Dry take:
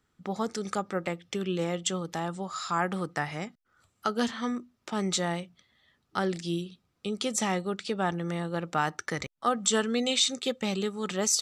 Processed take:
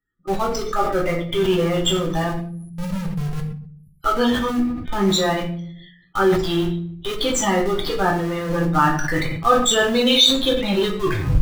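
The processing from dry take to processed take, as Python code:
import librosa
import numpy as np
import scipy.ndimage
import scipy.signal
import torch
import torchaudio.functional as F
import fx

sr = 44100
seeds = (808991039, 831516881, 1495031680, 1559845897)

p1 = fx.tape_stop_end(x, sr, length_s=0.42)
p2 = fx.spec_erase(p1, sr, start_s=2.29, length_s=1.72, low_hz=250.0, high_hz=10000.0)
p3 = fx.peak_eq(p2, sr, hz=3500.0, db=4.5, octaves=0.81)
p4 = fx.spec_topn(p3, sr, count=32)
p5 = fx.noise_reduce_blind(p4, sr, reduce_db=19)
p6 = fx.schmitt(p5, sr, flips_db=-38.0)
p7 = p5 + (p6 * librosa.db_to_amplitude(-6.5))
p8 = fx.room_shoebox(p7, sr, seeds[0], volume_m3=55.0, walls='mixed', distance_m=0.78)
p9 = fx.sustainer(p8, sr, db_per_s=62.0)
y = p9 * librosa.db_to_amplitude(5.0)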